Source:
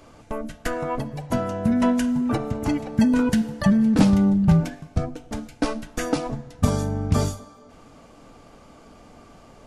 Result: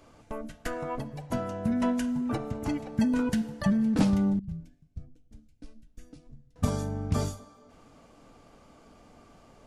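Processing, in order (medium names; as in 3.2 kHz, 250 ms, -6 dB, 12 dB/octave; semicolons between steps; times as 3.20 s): 4.39–6.56 s: amplifier tone stack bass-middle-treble 10-0-1; trim -7 dB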